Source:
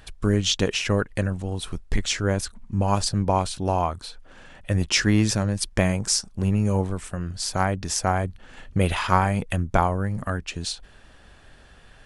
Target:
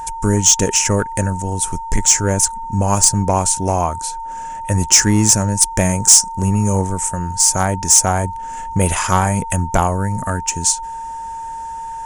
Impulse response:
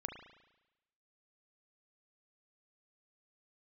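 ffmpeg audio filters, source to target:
-af "aeval=exprs='val(0)+0.0282*sin(2*PI*910*n/s)':channel_layout=same,highshelf=frequency=5200:width_type=q:width=3:gain=10,acontrast=83,volume=-1dB"

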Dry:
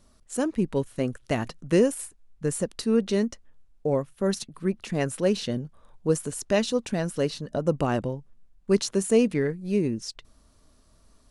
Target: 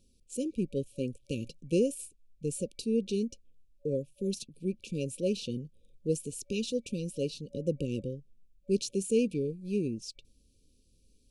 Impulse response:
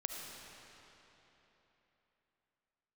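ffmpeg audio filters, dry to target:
-af "afftfilt=real='re*(1-between(b*sr/4096,570,2300))':imag='im*(1-between(b*sr/4096,570,2300))':win_size=4096:overlap=0.75,volume=-6.5dB"

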